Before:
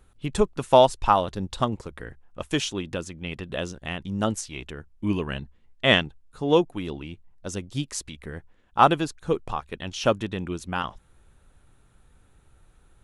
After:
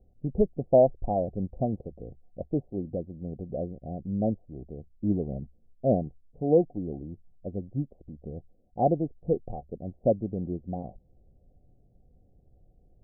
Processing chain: rippled Chebyshev low-pass 750 Hz, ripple 3 dB

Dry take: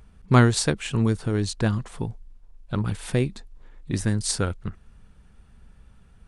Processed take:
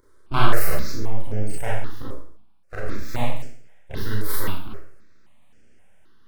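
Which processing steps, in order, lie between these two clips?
0.91–1.54 formant sharpening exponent 3; HPF 150 Hz 12 dB/oct; full-wave rectifier; vibrato 3.7 Hz 41 cents; Schroeder reverb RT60 0.57 s, combs from 29 ms, DRR -6 dB; step phaser 3.8 Hz 730–3800 Hz; gain -2.5 dB

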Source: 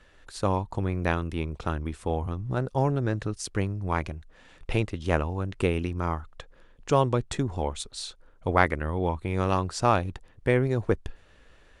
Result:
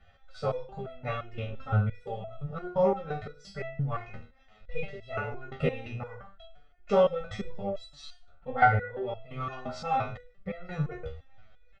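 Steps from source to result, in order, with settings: comb 2.1 ms, depth 93%; formant-preserving pitch shift +5.5 st; air absorption 200 m; reverse bouncing-ball echo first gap 20 ms, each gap 1.2×, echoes 5; stepped resonator 5.8 Hz 79–660 Hz; gain +4.5 dB

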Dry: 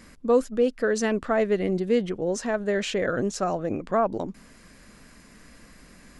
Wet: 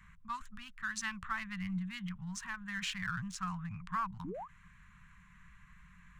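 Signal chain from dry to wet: Wiener smoothing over 9 samples; Chebyshev band-stop 180–1000 Hz, order 4; painted sound rise, 4.24–4.48, 240–1300 Hz -38 dBFS; ending taper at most 260 dB/s; gain -4.5 dB

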